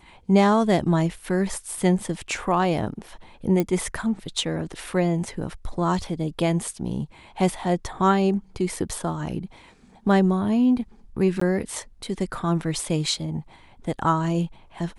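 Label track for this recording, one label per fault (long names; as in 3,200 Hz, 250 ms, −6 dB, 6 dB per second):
3.600000	3.600000	click −11 dBFS
11.400000	11.410000	drop-out 14 ms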